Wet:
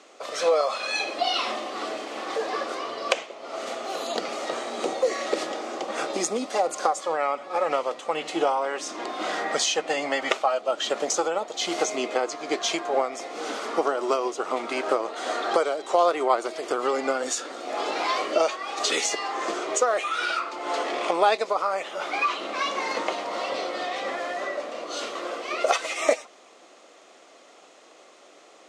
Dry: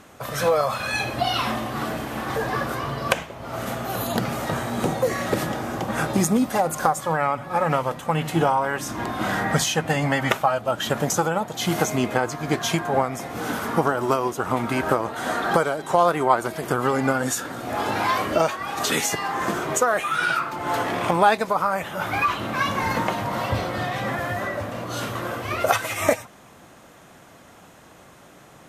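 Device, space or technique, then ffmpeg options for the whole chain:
phone speaker on a table: -af "highpass=f=350:w=0.5412,highpass=f=350:w=1.3066,equalizer=f=920:t=q:w=4:g=-7,equalizer=f=1600:t=q:w=4:g=-9,equalizer=f=4500:t=q:w=4:g=3,lowpass=f=7700:w=0.5412,lowpass=f=7700:w=1.3066"

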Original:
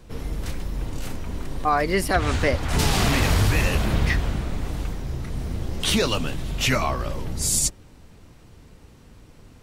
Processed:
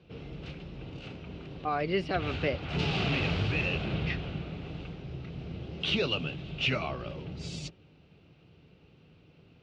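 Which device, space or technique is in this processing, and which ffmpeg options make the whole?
guitar cabinet: -af "highpass=96,equalizer=f=160:t=q:w=4:g=7,equalizer=f=230:t=q:w=4:g=-4,equalizer=f=390:t=q:w=4:g=3,equalizer=f=1000:t=q:w=4:g=-8,equalizer=f=1800:t=q:w=4:g=-7,equalizer=f=2700:t=q:w=4:g=8,lowpass=f=4100:w=0.5412,lowpass=f=4100:w=1.3066,volume=0.398"

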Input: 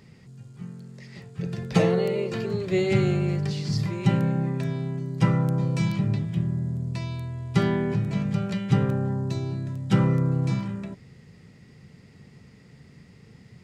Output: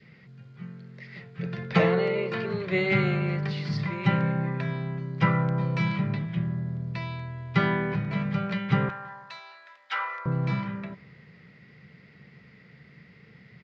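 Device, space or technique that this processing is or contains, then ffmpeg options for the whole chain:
guitar cabinet: -filter_complex "[0:a]highpass=100,equalizer=f=100:t=q:w=4:g=-9,equalizer=f=260:t=q:w=4:g=-7,equalizer=f=370:t=q:w=4:g=-4,equalizer=f=830:t=q:w=4:g=-4,equalizer=f=1500:t=q:w=4:g=5,equalizer=f=2100:t=q:w=4:g=7,lowpass=f=4300:w=0.5412,lowpass=f=4300:w=1.3066,asettb=1/sr,asplit=3[s0][s1][s2];[s0]atrim=end=8.894[s3];[s1]atrim=start=8.89:end=10.26,asetpts=PTS-STARTPTS,afade=t=in:d=0.004:c=qsin,afade=t=out:st=1.366:d=0.004:c=qsin,highpass=f=830:w=0.5412,highpass=f=830:w=1.3066[s4];[s2]atrim=start=10.256[s5];[s3][s4]acrossfade=d=0.004:c1=hsin:c2=qsin[s6];[s6][s5]acrossfade=d=0.004:c1=qsin:c2=hsin,adynamicequalizer=threshold=0.00355:dfrequency=990:dqfactor=1.8:tfrequency=990:tqfactor=1.8:attack=5:release=100:ratio=0.375:range=3:mode=boostabove:tftype=bell,asplit=2[s7][s8];[s8]adelay=168,lowpass=f=2000:p=1,volume=0.0708,asplit=2[s9][s10];[s10]adelay=168,lowpass=f=2000:p=1,volume=0.44,asplit=2[s11][s12];[s12]adelay=168,lowpass=f=2000:p=1,volume=0.44[s13];[s7][s9][s11][s13]amix=inputs=4:normalize=0"

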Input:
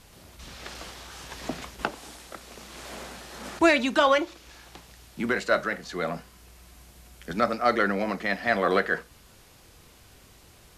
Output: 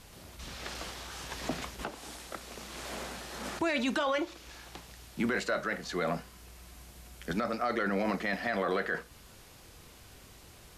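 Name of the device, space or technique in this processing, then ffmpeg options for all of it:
stacked limiters: -af "alimiter=limit=0.188:level=0:latency=1:release=279,alimiter=limit=0.0841:level=0:latency=1:release=12"

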